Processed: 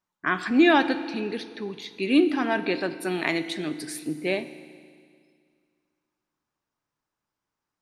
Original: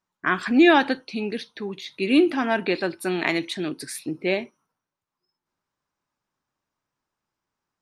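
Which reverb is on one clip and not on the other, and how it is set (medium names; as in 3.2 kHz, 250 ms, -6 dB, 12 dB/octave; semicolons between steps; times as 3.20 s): FDN reverb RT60 2.1 s, low-frequency decay 1.1×, high-frequency decay 1×, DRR 11.5 dB; trim -2.5 dB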